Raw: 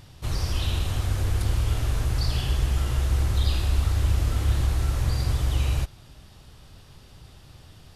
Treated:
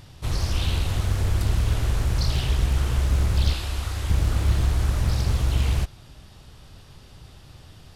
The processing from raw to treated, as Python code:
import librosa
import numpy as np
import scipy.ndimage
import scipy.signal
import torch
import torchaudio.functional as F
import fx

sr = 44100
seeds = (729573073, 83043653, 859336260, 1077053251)

y = fx.low_shelf(x, sr, hz=460.0, db=-8.0, at=(3.53, 4.1))
y = fx.doppler_dist(y, sr, depth_ms=0.87)
y = y * 10.0 ** (2.0 / 20.0)